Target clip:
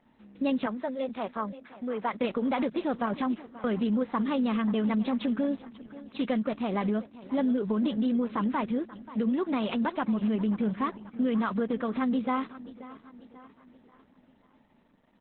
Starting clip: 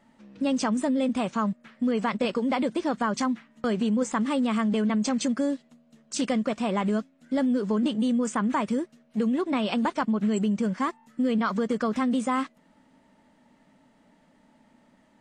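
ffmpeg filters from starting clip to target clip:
-filter_complex "[0:a]asettb=1/sr,asplit=3[a][b][c];[a]atrim=end=0.664[d];[b]atrim=start=0.66:end=2.2,asetpts=PTS-STARTPTS,afade=t=in:d=0.004:c=qsin,afade=t=out:st=1.536:d=0.004:c=qsin,highpass=290,equalizer=f=290:t=q:w=4:g=-9,equalizer=f=2.8k:t=q:w=4:g=-6,equalizer=f=4.2k:t=q:w=4:g=-7,lowpass=f=7.4k:w=0.5412,lowpass=f=7.4k:w=1.3066[e];[c]atrim=start=2.196[f];[d][e]acrossfade=d=0.004:c1=hsin:c2=qsin[g];[g][f]acrossfade=d=0.004:c1=qsin:c2=hsin,asplit=2[h][i];[i]aecho=0:1:534|1068|1602|2136:0.15|0.0733|0.0359|0.0176[j];[h][j]amix=inputs=2:normalize=0,volume=-2dB" -ar 48000 -c:a libopus -b:a 8k

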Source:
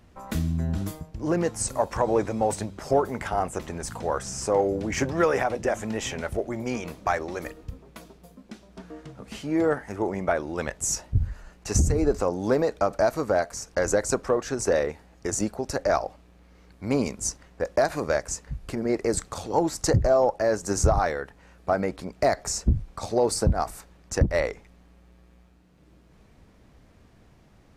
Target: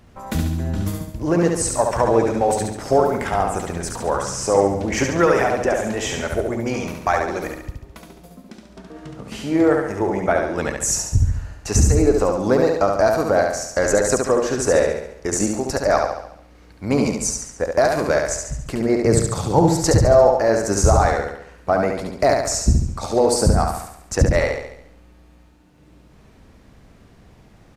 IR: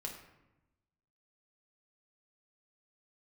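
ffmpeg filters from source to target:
-filter_complex "[0:a]asplit=3[a][b][c];[a]afade=t=out:st=7.7:d=0.02[d];[b]acompressor=threshold=-42dB:ratio=4,afade=t=in:st=7.7:d=0.02,afade=t=out:st=8.94:d=0.02[e];[c]afade=t=in:st=8.94:d=0.02[f];[d][e][f]amix=inputs=3:normalize=0,asettb=1/sr,asplit=3[g][h][i];[g]atrim=end=19.004[j];[h]atrim=start=19:end=19.82,asetpts=PTS-STARTPTS,afade=t=in:d=0.004:c=qsin,afade=t=out:st=0.816:d=0.004:c=qsin,equalizer=f=130:w=1.1:g=14[k];[i]atrim=start=19.816[l];[j][k]acrossfade=d=0.004:c1=hsin:c2=qsin[m];[m][l]acrossfade=d=0.004:c1=qsin:c2=hsin,aecho=1:1:70|140|210|280|350|420|490:0.631|0.322|0.164|0.0837|0.0427|0.0218|0.0111,volume=5dB"

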